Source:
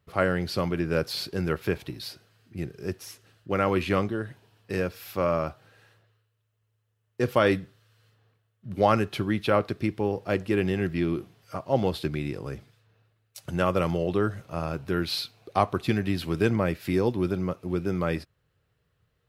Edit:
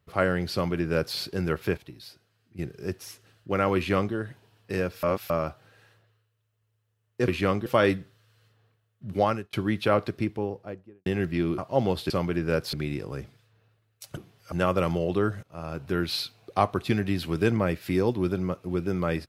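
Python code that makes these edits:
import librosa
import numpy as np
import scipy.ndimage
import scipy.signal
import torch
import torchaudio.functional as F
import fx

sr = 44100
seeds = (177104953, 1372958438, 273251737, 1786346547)

y = fx.studio_fade_out(x, sr, start_s=9.69, length_s=0.99)
y = fx.edit(y, sr, fx.duplicate(start_s=0.53, length_s=0.63, to_s=12.07),
    fx.clip_gain(start_s=1.77, length_s=0.82, db=-8.0),
    fx.duplicate(start_s=3.76, length_s=0.38, to_s=7.28),
    fx.reverse_span(start_s=5.03, length_s=0.27),
    fx.fade_out_span(start_s=8.77, length_s=0.38),
    fx.move(start_s=11.2, length_s=0.35, to_s=13.51),
    fx.fade_in_from(start_s=14.42, length_s=0.47, floor_db=-16.5), tone=tone)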